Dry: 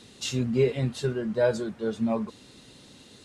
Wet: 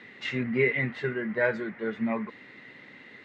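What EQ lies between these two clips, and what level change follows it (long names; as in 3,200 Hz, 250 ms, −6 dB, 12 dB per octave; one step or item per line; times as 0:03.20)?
Bessel high-pass filter 190 Hz, order 2
dynamic equaliser 610 Hz, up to −5 dB, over −35 dBFS, Q 1.2
low-pass with resonance 2,000 Hz, resonance Q 9.7
0.0 dB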